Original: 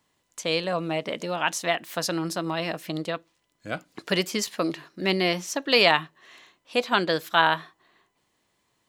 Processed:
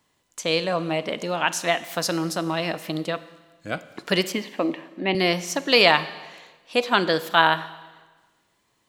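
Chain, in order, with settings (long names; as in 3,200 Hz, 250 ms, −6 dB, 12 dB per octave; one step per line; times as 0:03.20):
0:04.32–0:05.15: loudspeaker in its box 230–3,000 Hz, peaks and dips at 260 Hz +7 dB, 410 Hz −4 dB, 810 Hz +5 dB, 1,400 Hz −10 dB
four-comb reverb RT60 1.3 s, combs from 31 ms, DRR 14.5 dB
level +2.5 dB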